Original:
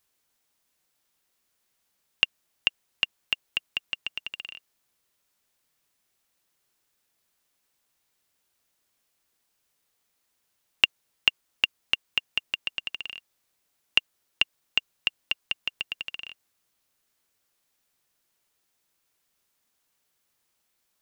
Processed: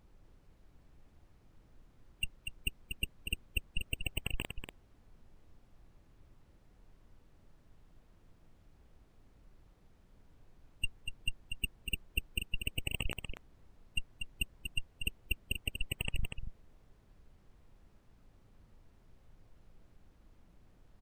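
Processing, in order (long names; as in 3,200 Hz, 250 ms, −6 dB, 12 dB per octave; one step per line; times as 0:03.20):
comparator with hysteresis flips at −26.5 dBFS
gate on every frequency bin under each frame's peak −20 dB strong
background noise brown −68 dBFS
on a send: single-tap delay 240 ms −6.5 dB
on the sum: level +8.5 dB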